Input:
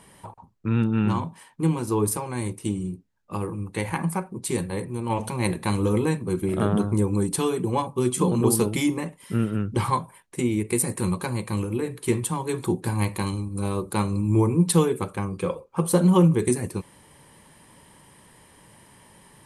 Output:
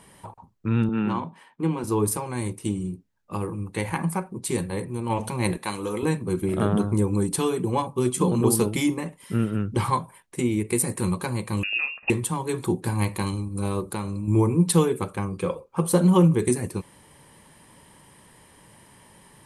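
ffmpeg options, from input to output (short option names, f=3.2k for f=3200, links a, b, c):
-filter_complex "[0:a]asettb=1/sr,asplit=3[a][b][c];[a]atrim=end=0.894[d];[b]atrim=start=0.89:end=1.84,asetpts=PTS-STARTPTS,afade=t=in:d=0.004:c=qsin,afade=t=out:st=0.946:d=0.004:c=qsin,acrossover=split=150 3900:gain=0.141 1 0.224[e][f][g];[e][f][g]amix=inputs=3:normalize=0[h];[c]atrim=start=1.836[i];[d][h]acrossfade=d=0.004:c1=hsin:c2=qsin[j];[j][i]acrossfade=d=0.004:c1=qsin:c2=hsin,asettb=1/sr,asplit=3[k][l][m];[k]atrim=end=5.574[n];[l]atrim=start=5.57:end=6.03,asetpts=PTS-STARTPTS,afade=t=in:d=0.004:c=qsin,afade=t=out:st=0.456:d=0.004:c=qsin,highpass=f=590:p=1[o];[m]atrim=start=6.026[p];[n][o]acrossfade=d=0.004:c1=hsin:c2=qsin[q];[q][p]acrossfade=d=0.004:c1=qsin:c2=hsin,asettb=1/sr,asplit=3[r][s][t];[r]atrim=end=8.074[u];[s]atrim=start=8.07:end=9.05,asetpts=PTS-STARTPTS,afade=t=in:d=0.004:c=qsin,afade=t=out:st=0.976:d=0.004:c=qsin,agate=range=-33dB:threshold=-28dB:ratio=3:release=100:detection=peak[v];[t]atrim=start=9.046[w];[u][v]acrossfade=d=0.004:c1=hsin:c2=qsin[x];[x][w]acrossfade=d=0.004:c1=qsin:c2=hsin,asettb=1/sr,asplit=3[y][z][aa];[y]atrim=end=11.634[ab];[z]atrim=start=11.63:end=12.1,asetpts=PTS-STARTPTS,afade=t=in:d=0.004:c=qsin,afade=t=out:st=0.466:d=0.004:c=qsin,lowpass=f=2.5k:t=q:w=0.5098,lowpass=f=2.5k:t=q:w=0.6013,lowpass=f=2.5k:t=q:w=0.9,lowpass=f=2.5k:t=q:w=2.563,afreqshift=-2900[ac];[aa]atrim=start=12.096[ad];[ab][ac]acrossfade=d=0.004:c1=hsin:c2=qsin[ae];[ae][ad]acrossfade=d=0.004:c1=qsin:c2=hsin,asettb=1/sr,asplit=3[af][ag][ah];[af]atrim=end=13.804[ai];[ag]atrim=start=13.8:end=14.28,asetpts=PTS-STARTPTS,afade=t=in:d=0.004:c=qsin,afade=t=out:st=0.476:d=0.004:c=qsin,acompressor=threshold=-25dB:ratio=6:attack=3.2:release=140:knee=1:detection=peak[aj];[ah]atrim=start=14.276[ak];[ai][aj]acrossfade=d=0.004:c1=hsin:c2=qsin[al];[al][ak]acrossfade=d=0.004:c1=qsin:c2=hsin"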